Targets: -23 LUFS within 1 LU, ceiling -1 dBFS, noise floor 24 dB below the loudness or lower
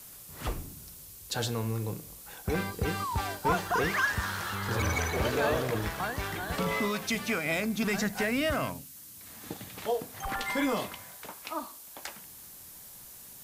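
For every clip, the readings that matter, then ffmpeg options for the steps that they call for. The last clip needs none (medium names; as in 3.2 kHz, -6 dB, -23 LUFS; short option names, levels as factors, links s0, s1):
noise floor -49 dBFS; noise floor target -56 dBFS; loudness -31.5 LUFS; peak level -14.5 dBFS; loudness target -23.0 LUFS
-> -af "afftdn=nr=7:nf=-49"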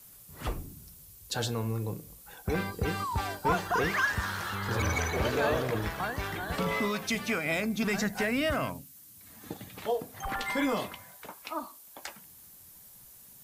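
noise floor -53 dBFS; noise floor target -55 dBFS
-> -af "afftdn=nr=6:nf=-53"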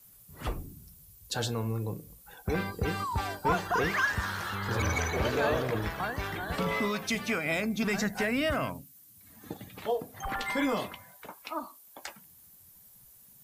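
noise floor -56 dBFS; loudness -31.0 LUFS; peak level -14.5 dBFS; loudness target -23.0 LUFS
-> -af "volume=2.51"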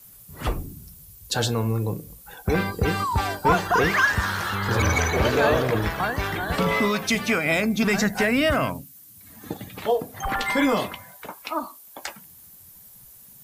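loudness -23.0 LUFS; peak level -6.5 dBFS; noise floor -48 dBFS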